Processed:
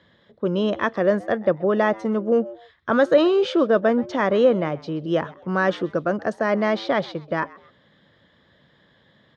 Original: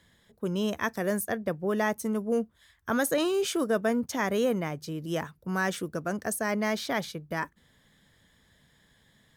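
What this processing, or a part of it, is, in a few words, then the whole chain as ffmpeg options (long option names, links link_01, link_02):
frequency-shifting delay pedal into a guitar cabinet: -filter_complex "[0:a]asplit=3[link_01][link_02][link_03];[link_02]adelay=129,afreqshift=120,volume=-21.5dB[link_04];[link_03]adelay=258,afreqshift=240,volume=-31.1dB[link_05];[link_01][link_04][link_05]amix=inputs=3:normalize=0,highpass=97,equalizer=frequency=340:width_type=q:width=4:gain=4,equalizer=frequency=560:width_type=q:width=4:gain=8,equalizer=frequency=1200:width_type=q:width=4:gain=4,equalizer=frequency=2300:width_type=q:width=4:gain=-4,lowpass=frequency=4100:width=0.5412,lowpass=frequency=4100:width=1.3066,volume=5.5dB"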